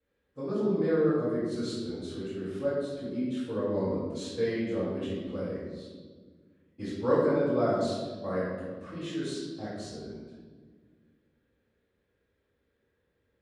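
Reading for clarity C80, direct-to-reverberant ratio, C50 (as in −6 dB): 1.5 dB, −17.5 dB, −1.5 dB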